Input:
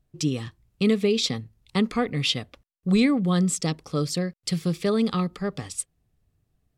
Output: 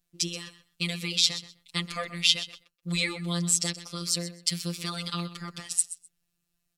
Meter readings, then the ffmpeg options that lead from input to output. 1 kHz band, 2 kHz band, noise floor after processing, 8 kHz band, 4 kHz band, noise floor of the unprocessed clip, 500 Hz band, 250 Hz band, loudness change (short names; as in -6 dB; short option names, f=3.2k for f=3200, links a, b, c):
-6.5 dB, +0.5 dB, -80 dBFS, +5.0 dB, +3.5 dB, -75 dBFS, -14.5 dB, -12.5 dB, -3.0 dB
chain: -af "afftfilt=real='hypot(re,im)*cos(PI*b)':imag='0':win_size=1024:overlap=0.75,tiltshelf=f=1.4k:g=-9,aecho=1:1:127|254:0.188|0.032"